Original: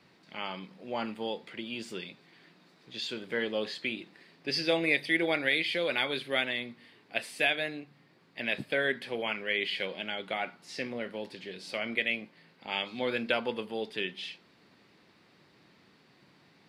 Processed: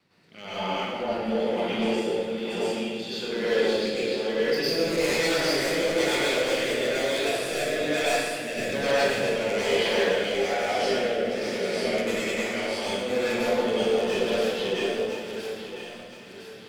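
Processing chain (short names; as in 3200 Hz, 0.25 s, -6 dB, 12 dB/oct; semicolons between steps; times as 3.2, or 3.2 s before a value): reverse delay 0.552 s, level -1.5 dB; wavefolder -24 dBFS; high shelf 9100 Hz +5 dB; echo with dull and thin repeats by turns 0.507 s, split 1300 Hz, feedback 65%, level -7.5 dB; dynamic EQ 530 Hz, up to +7 dB, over -45 dBFS, Q 1.2; limiter -21.5 dBFS, peak gain reduction 6 dB; sample leveller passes 1; rotary speaker horn 1.1 Hz, later 6 Hz, at 12.82; plate-style reverb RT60 1.4 s, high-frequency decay 0.8×, pre-delay 85 ms, DRR -10 dB; gain -4.5 dB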